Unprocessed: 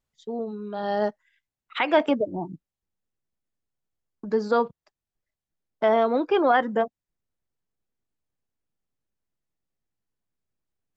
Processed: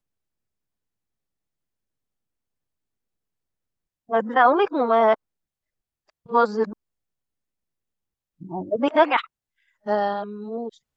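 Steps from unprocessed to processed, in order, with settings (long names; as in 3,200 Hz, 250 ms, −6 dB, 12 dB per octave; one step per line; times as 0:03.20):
played backwards from end to start
dynamic equaliser 1,100 Hz, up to +8 dB, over −38 dBFS, Q 1.4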